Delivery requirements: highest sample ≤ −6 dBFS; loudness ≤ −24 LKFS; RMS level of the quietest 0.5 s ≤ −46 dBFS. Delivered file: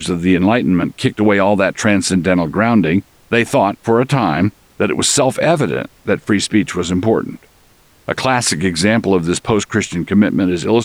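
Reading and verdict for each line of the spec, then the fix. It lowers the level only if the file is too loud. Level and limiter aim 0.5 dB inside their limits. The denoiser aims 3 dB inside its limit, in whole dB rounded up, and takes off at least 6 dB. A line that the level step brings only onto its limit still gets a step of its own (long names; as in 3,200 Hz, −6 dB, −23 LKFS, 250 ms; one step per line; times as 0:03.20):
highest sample −2.0 dBFS: out of spec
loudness −15.0 LKFS: out of spec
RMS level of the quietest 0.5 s −50 dBFS: in spec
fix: level −9.5 dB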